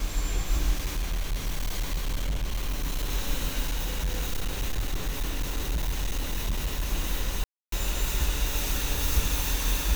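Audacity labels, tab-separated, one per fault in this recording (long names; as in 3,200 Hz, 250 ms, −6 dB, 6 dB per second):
0.730000	3.120000	clipping −24 dBFS
3.630000	6.890000	clipping −23.5 dBFS
7.440000	7.720000	drop-out 283 ms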